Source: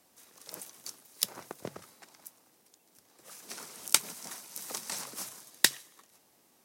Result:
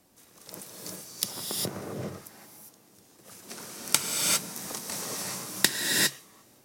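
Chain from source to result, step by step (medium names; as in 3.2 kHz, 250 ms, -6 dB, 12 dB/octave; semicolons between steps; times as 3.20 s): bass shelf 280 Hz +12 dB; gated-style reverb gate 430 ms rising, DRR -3 dB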